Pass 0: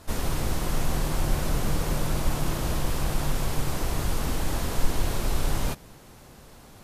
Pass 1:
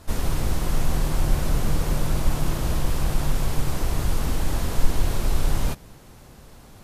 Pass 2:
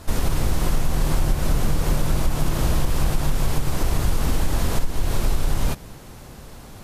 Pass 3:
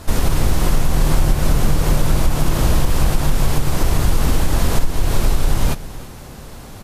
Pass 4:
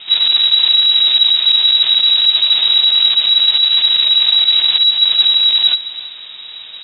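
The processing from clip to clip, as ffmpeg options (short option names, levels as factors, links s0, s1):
-af "lowshelf=f=150:g=5"
-af "acompressor=threshold=0.1:ratio=10,volume=2"
-af "aecho=1:1:321:0.133,volume=1.78"
-af "asoftclip=type=tanh:threshold=0.355,lowpass=f=3300:t=q:w=0.5098,lowpass=f=3300:t=q:w=0.6013,lowpass=f=3300:t=q:w=0.9,lowpass=f=3300:t=q:w=2.563,afreqshift=-3900,volume=1.41"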